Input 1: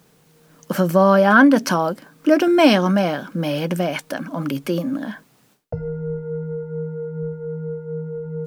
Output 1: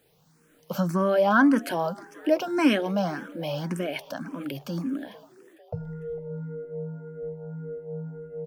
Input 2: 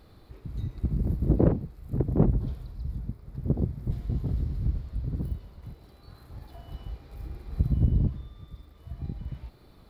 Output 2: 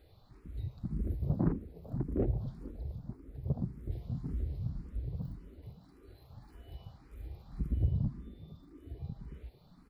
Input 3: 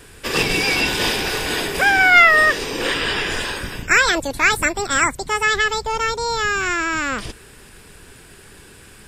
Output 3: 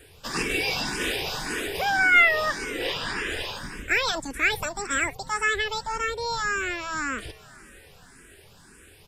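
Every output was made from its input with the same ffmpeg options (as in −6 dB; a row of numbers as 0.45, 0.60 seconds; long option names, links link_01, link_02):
-filter_complex "[0:a]asplit=4[link_01][link_02][link_03][link_04];[link_02]adelay=450,afreqshift=110,volume=-21dB[link_05];[link_03]adelay=900,afreqshift=220,volume=-27.4dB[link_06];[link_04]adelay=1350,afreqshift=330,volume=-33.8dB[link_07];[link_01][link_05][link_06][link_07]amix=inputs=4:normalize=0,asplit=2[link_08][link_09];[link_09]afreqshift=1.8[link_10];[link_08][link_10]amix=inputs=2:normalize=1,volume=-5dB"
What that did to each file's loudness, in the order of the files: −8.0, −8.0, −7.5 LU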